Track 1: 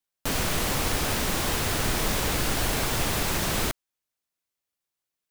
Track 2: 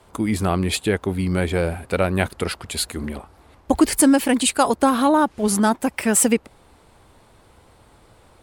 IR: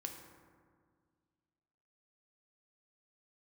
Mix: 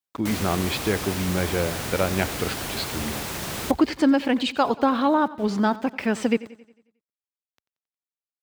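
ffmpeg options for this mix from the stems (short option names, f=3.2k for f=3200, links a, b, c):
-filter_complex "[0:a]volume=-4dB,asplit=2[a][b];[b]volume=-22dB[c];[1:a]lowpass=f=4.8k:w=0.5412,lowpass=f=4.8k:w=1.3066,aeval=exprs='val(0)*gte(abs(val(0)),0.01)':c=same,volume=-3.5dB,asplit=2[d][e];[e]volume=-18.5dB[f];[c][f]amix=inputs=2:normalize=0,aecho=0:1:90|180|270|360|450|540|630:1|0.51|0.26|0.133|0.0677|0.0345|0.0176[g];[a][d][g]amix=inputs=3:normalize=0,highpass=66"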